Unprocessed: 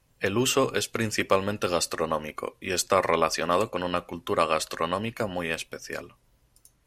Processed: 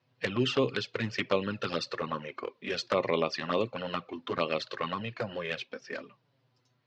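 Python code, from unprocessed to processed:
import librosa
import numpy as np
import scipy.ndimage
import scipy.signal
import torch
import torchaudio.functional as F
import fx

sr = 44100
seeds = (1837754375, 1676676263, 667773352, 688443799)

y = scipy.signal.sosfilt(scipy.signal.ellip(3, 1.0, 40, [120.0, 4500.0], 'bandpass', fs=sr, output='sos'), x)
y = fx.env_flanger(y, sr, rest_ms=8.2, full_db=-19.0)
y = fx.dynamic_eq(y, sr, hz=790.0, q=1.5, threshold_db=-42.0, ratio=4.0, max_db=-6)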